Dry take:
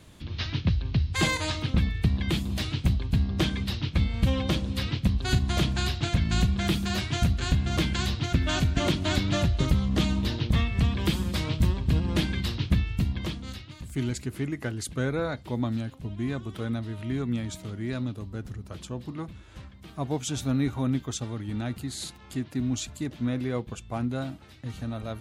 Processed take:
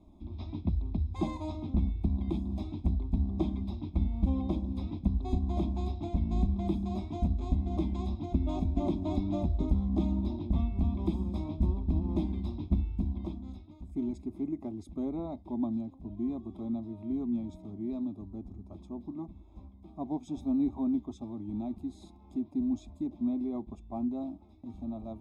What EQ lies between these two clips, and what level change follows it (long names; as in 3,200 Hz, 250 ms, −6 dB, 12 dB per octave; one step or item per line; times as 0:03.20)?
moving average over 30 samples
phaser with its sweep stopped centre 480 Hz, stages 6
0.0 dB